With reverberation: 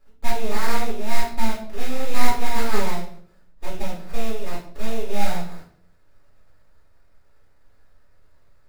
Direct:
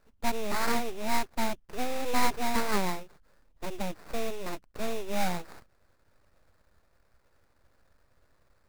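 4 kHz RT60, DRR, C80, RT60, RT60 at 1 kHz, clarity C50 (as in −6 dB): 0.45 s, −5.5 dB, 11.0 dB, 0.55 s, 0.50 s, 7.0 dB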